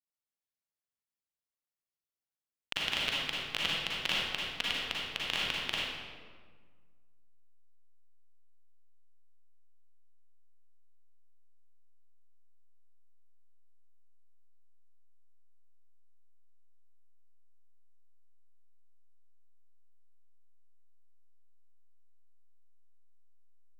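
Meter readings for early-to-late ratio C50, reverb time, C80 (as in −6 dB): −3.5 dB, 1.6 s, 0.0 dB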